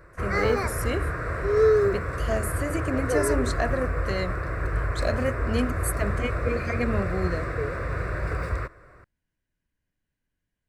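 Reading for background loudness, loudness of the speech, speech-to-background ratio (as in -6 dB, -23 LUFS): -27.5 LUFS, -30.5 LUFS, -3.0 dB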